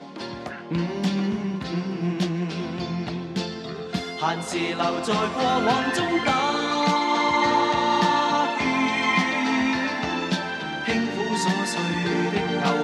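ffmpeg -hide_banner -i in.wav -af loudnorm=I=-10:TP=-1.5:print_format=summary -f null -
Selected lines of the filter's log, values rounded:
Input Integrated:    -23.9 LUFS
Input True Peak:      -8.2 dBTP
Input LRA:             6.3 LU
Input Threshold:     -33.9 LUFS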